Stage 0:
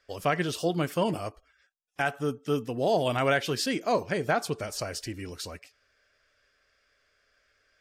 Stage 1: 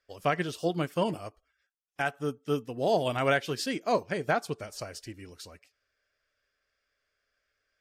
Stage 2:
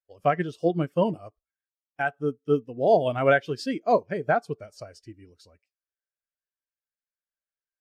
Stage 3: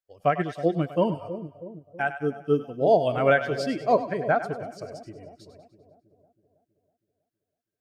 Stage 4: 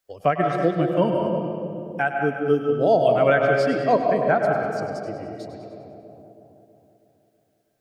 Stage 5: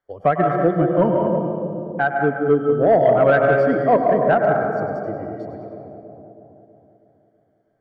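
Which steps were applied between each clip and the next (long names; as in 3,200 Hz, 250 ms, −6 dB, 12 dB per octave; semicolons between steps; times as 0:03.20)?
expander for the loud parts 1.5 to 1, over −42 dBFS
every bin expanded away from the loudest bin 1.5 to 1; level +6 dB
echo with a time of its own for lows and highs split 640 Hz, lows 323 ms, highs 99 ms, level −11 dB
convolution reverb RT60 1.4 s, pre-delay 95 ms, DRR 3 dB; multiband upward and downward compressor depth 40%; level +2 dB
Savitzky-Golay smoothing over 41 samples; soft clipping −9.5 dBFS, distortion −21 dB; level +4.5 dB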